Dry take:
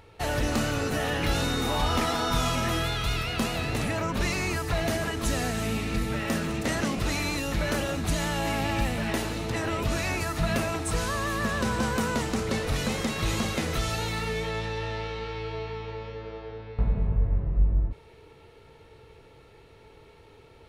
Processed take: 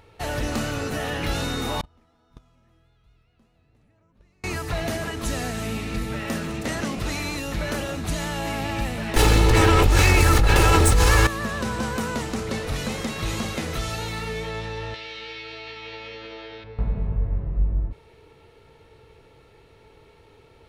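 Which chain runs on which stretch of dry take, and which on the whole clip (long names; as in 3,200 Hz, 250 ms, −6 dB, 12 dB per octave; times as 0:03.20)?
0:01.81–0:04.44: spectral tilt −2 dB per octave + noise gate −13 dBFS, range −38 dB
0:09.16–0:11.27: lower of the sound and its delayed copy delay 2.3 ms + low-shelf EQ 89 Hz +11.5 dB + envelope flattener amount 100%
0:14.94–0:16.64: meter weighting curve D + downward compressor 10 to 1, threshold −34 dBFS + double-tracking delay 15 ms −4.5 dB
whole clip: no processing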